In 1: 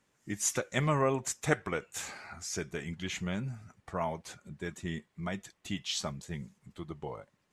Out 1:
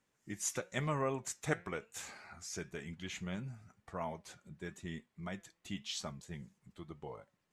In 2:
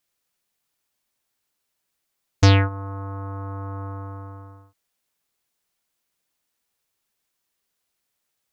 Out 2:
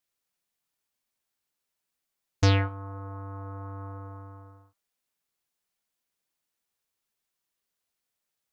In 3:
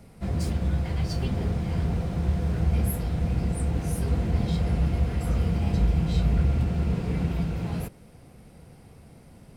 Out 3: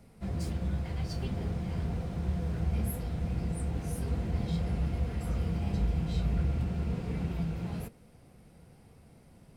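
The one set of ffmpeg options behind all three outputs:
-af "flanger=delay=3.8:depth=2.5:regen=89:speed=1:shape=triangular,volume=-2dB"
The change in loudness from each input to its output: −6.5, −7.0, −6.5 LU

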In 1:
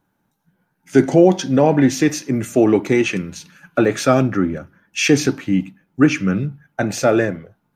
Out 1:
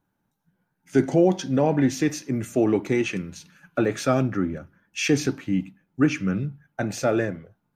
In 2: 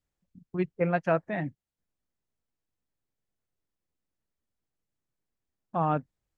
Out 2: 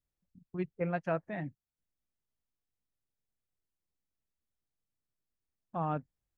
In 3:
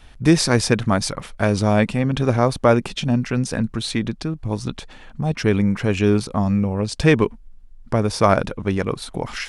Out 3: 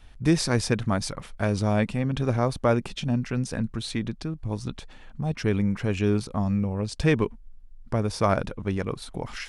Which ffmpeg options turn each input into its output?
-af "lowshelf=frequency=120:gain=5,volume=-7.5dB"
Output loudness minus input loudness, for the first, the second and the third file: −7.0, −7.0, −6.5 LU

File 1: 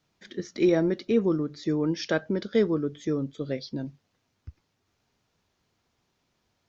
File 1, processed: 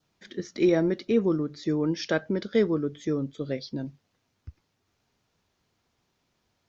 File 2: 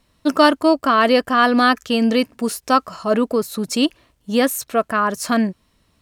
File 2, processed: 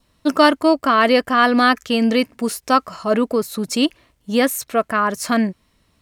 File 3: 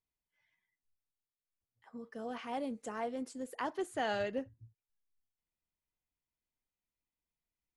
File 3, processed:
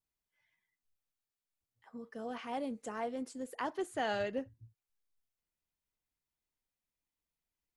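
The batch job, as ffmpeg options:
-af "adynamicequalizer=threshold=0.01:dfrequency=2100:dqfactor=4.8:tfrequency=2100:tqfactor=4.8:attack=5:release=100:ratio=0.375:range=2.5:mode=boostabove:tftype=bell"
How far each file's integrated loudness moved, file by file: 0.0, 0.0, 0.0 LU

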